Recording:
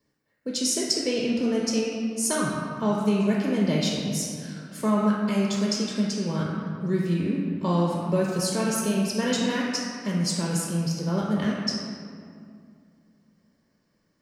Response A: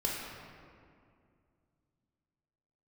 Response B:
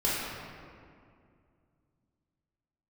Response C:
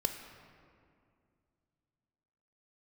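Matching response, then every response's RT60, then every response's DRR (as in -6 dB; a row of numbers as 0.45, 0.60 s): A; 2.3, 2.3, 2.3 s; -4.0, -8.0, 5.5 dB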